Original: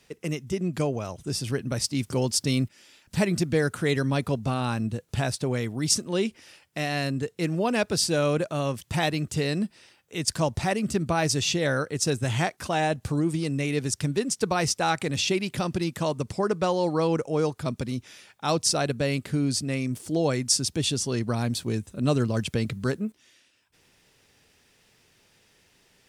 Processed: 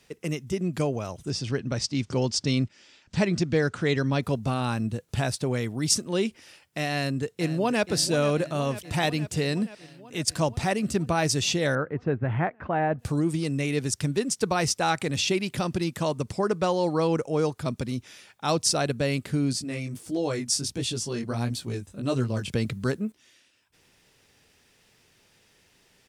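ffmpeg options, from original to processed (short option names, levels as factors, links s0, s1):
-filter_complex "[0:a]asettb=1/sr,asplit=3[s0][s1][s2];[s0]atrim=end=1.304[s3];[s1]atrim=start=1.3:end=4.23,asetpts=PTS-STARTPTS,afade=t=in:d=0.004:c=qsin,afade=t=out:st=2.926:d=0.004:c=qsin,lowpass=f=6800:w=0.5412,lowpass=f=6800:w=1.3066[s4];[s2]atrim=start=4.226[s5];[s3][s4]acrossfade=d=0.004:c1=hsin:c2=qsin[s6];[s6][s5]acrossfade=d=0.004:c1=qsin:c2=hsin,asplit=2[s7][s8];[s8]afade=t=in:st=6.92:d=0.01,afade=t=out:st=7.88:d=0.01,aecho=0:1:480|960|1440|1920|2400|2880|3360|3840|4320|4800|5280:0.211349|0.158512|0.118884|0.0891628|0.0668721|0.0501541|0.0376156|0.0282117|0.0211588|0.0158691|0.0119018[s9];[s7][s9]amix=inputs=2:normalize=0,asettb=1/sr,asplit=3[s10][s11][s12];[s10]atrim=end=11.754[s13];[s11]atrim=start=11.75:end=12.99,asetpts=PTS-STARTPTS,afade=t=in:d=0.004:c=qsin,afade=t=out:st=1.236:d=0.004:c=qsin,lowpass=f=1900:w=0.5412,lowpass=f=1900:w=1.3066[s14];[s12]atrim=start=12.986[s15];[s13][s14]acrossfade=d=0.004:c1=hsin:c2=qsin[s16];[s16][s15]acrossfade=d=0.004:c1=qsin:c2=hsin,asettb=1/sr,asplit=3[s17][s18][s19];[s17]atrim=end=19.534[s20];[s18]atrim=start=19.53:end=22.53,asetpts=PTS-STARTPTS,afade=t=in:d=0.004:c=qsin,afade=t=out:st=2.996:d=0.004:c=qsin,flanger=delay=15.5:depth=6.3:speed=1.5[s21];[s19]atrim=start=22.526[s22];[s20][s21]acrossfade=d=0.004:c1=hsin:c2=qsin[s23];[s23][s22]acrossfade=d=0.004:c1=qsin:c2=hsin"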